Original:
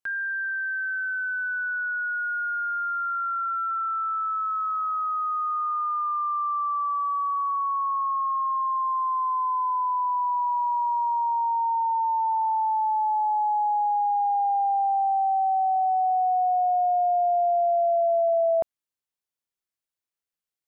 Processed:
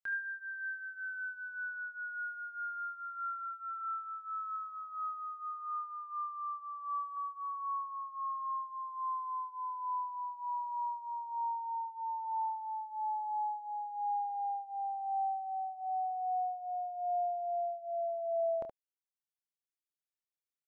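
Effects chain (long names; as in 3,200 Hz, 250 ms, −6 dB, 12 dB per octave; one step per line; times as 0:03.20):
0:04.56–0:07.17: expanding power law on the bin magnitudes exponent 3.8
reverb reduction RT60 1.5 s
ambience of single reflections 27 ms −8.5 dB, 72 ms −7.5 dB
level −8.5 dB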